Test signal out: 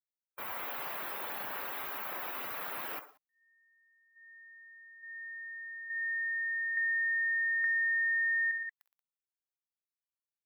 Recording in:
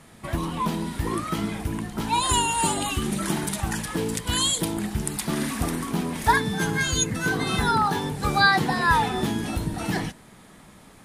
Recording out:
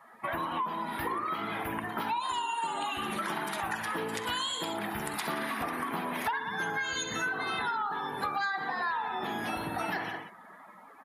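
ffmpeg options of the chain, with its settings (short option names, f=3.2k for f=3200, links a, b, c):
-filter_complex "[0:a]equalizer=f=1.1k:t=o:w=2.4:g=7,acrossover=split=7900[a][b];[b]acompressor=threshold=-43dB:ratio=4:attack=1:release=60[c];[a][c]amix=inputs=2:normalize=0,highshelf=f=4.5k:g=-6,asoftclip=type=tanh:threshold=-9.5dB,aexciter=amount=6.3:drive=1.8:freq=11k,highpass=f=710:p=1,aecho=1:1:47|64|117|181:0.211|0.266|0.251|0.237,acompressor=threshold=-31dB:ratio=10,afftdn=nr=19:nf=-47,volume=1.5dB"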